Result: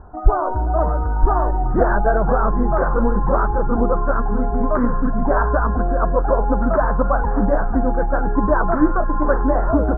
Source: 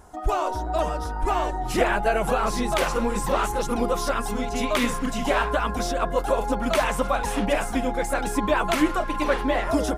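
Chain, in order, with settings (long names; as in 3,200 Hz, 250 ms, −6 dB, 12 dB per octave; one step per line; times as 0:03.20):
Butterworth low-pass 1,600 Hz 72 dB per octave
low-shelf EQ 130 Hz +9 dB
level +4 dB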